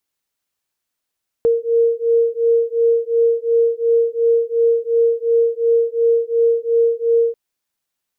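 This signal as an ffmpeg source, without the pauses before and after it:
-f lavfi -i "aevalsrc='0.158*(sin(2*PI*462*t)+sin(2*PI*464.8*t))':d=5.89:s=44100"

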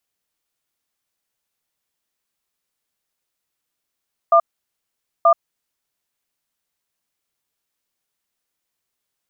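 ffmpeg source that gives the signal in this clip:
-f lavfi -i "aevalsrc='0.266*(sin(2*PI*674*t)+sin(2*PI*1200*t))*clip(min(mod(t,0.93),0.08-mod(t,0.93))/0.005,0,1)':d=1.77:s=44100"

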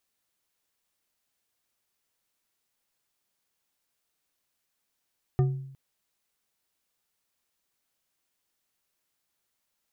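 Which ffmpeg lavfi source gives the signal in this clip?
-f lavfi -i "aevalsrc='0.133*pow(10,-3*t/0.74)*sin(2*PI*135*t)+0.0562*pow(10,-3*t/0.364)*sin(2*PI*372.2*t)+0.0237*pow(10,-3*t/0.227)*sin(2*PI*729.5*t)+0.01*pow(10,-3*t/0.16)*sin(2*PI*1206*t)+0.00422*pow(10,-3*t/0.121)*sin(2*PI*1800.9*t)':d=0.36:s=44100"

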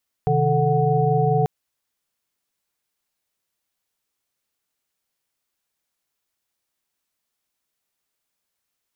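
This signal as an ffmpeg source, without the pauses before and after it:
-f lavfi -i "aevalsrc='0.0841*(sin(2*PI*130.81*t)+sin(2*PI*155.56*t)+sin(2*PI*440*t)+sin(2*PI*739.99*t))':d=1.19:s=44100"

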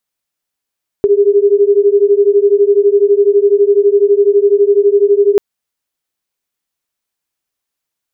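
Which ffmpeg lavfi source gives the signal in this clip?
-f lavfi -i "aevalsrc='0.335*(sin(2*PI*399*t)+sin(2*PI*411*t))':d=4.34:s=44100"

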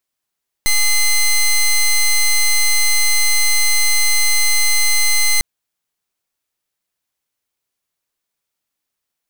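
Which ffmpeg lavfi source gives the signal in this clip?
-f lavfi -i "aevalsrc='0.224*(2*lt(mod(2060*t,1),0.12)-1)':d=4.75:s=44100"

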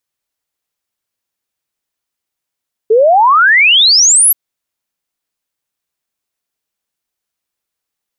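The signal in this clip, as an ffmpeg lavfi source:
-f lavfi -i "aevalsrc='0.596*clip(min(t,1.43-t)/0.01,0,1)*sin(2*PI*420*1.43/log(12000/420)*(exp(log(12000/420)*t/1.43)-1))':d=1.43:s=44100"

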